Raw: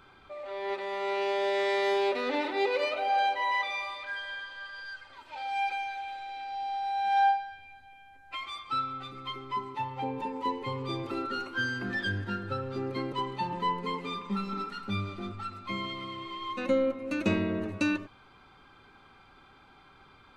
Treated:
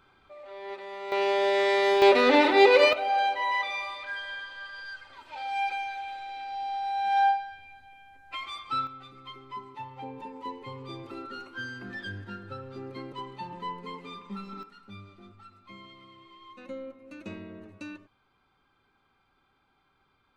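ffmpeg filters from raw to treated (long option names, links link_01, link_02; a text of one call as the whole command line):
ffmpeg -i in.wav -af "asetnsamples=nb_out_samples=441:pad=0,asendcmd='1.12 volume volume 4dB;2.02 volume volume 10.5dB;2.93 volume volume 1dB;8.87 volume volume -6.5dB;14.63 volume volume -13.5dB',volume=-5.5dB" out.wav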